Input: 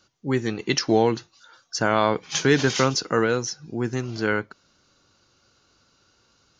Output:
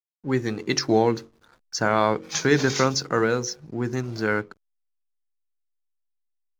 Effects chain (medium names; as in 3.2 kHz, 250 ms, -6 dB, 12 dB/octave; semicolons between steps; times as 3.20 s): peaking EQ 3 kHz -10 dB 0.27 oct; de-hum 45.78 Hz, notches 12; hysteresis with a dead band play -43.5 dBFS